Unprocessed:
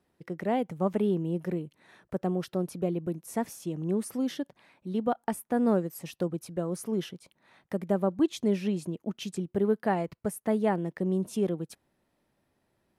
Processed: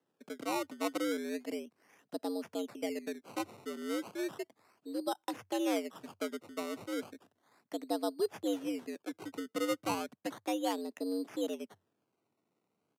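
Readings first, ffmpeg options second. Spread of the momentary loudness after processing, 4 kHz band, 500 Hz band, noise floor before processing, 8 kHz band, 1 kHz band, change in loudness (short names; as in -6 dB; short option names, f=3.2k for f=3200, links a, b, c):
10 LU, +1.5 dB, -7.0 dB, -76 dBFS, -3.0 dB, -5.0 dB, -7.0 dB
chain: -af "acrusher=samples=19:mix=1:aa=0.000001:lfo=1:lforange=19:lforate=0.34,afreqshift=91,aresample=32000,aresample=44100,volume=-7.5dB"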